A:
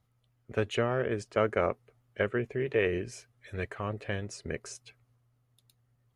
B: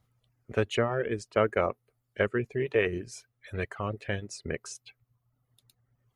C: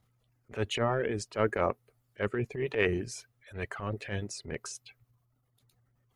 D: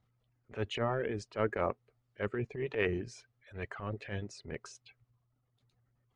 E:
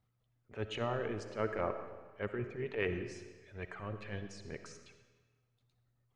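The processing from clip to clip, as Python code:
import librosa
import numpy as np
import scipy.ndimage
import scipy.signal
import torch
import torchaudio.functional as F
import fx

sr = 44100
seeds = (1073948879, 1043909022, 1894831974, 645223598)

y1 = fx.dereverb_blind(x, sr, rt60_s=0.91)
y1 = y1 * 10.0 ** (2.5 / 20.0)
y2 = fx.transient(y1, sr, attack_db=-11, sustain_db=5)
y3 = fx.air_absorb(y2, sr, metres=100.0)
y3 = y3 * 10.0 ** (-3.5 / 20.0)
y4 = fx.rev_freeverb(y3, sr, rt60_s=1.4, hf_ratio=0.9, predelay_ms=20, drr_db=8.0)
y4 = y4 * 10.0 ** (-3.5 / 20.0)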